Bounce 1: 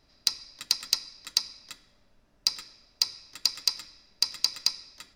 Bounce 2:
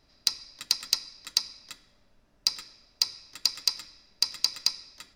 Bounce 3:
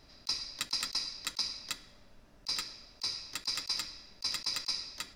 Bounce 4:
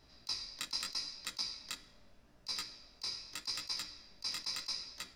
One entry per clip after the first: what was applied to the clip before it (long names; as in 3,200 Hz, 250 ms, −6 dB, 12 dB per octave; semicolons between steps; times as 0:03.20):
no processing that can be heard
compressor whose output falls as the input rises −32 dBFS, ratio −0.5
chorus effect 0.8 Hz, delay 15.5 ms, depth 7.7 ms; level −1.5 dB